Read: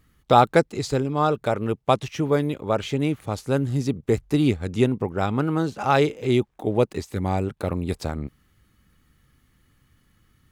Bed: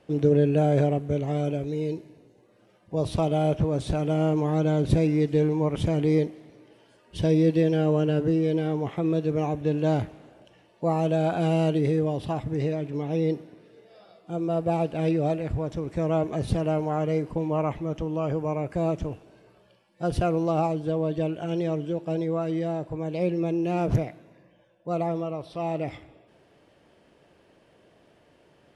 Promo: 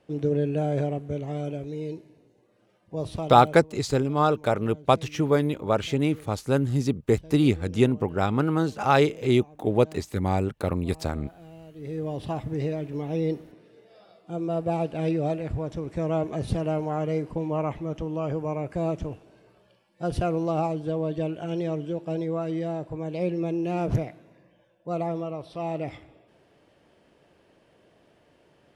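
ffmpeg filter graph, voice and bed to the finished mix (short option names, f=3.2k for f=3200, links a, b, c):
-filter_complex "[0:a]adelay=3000,volume=-0.5dB[a];[1:a]volume=17.5dB,afade=t=out:st=3.03:d=0.65:silence=0.112202,afade=t=in:st=11.75:d=0.5:silence=0.0794328[b];[a][b]amix=inputs=2:normalize=0"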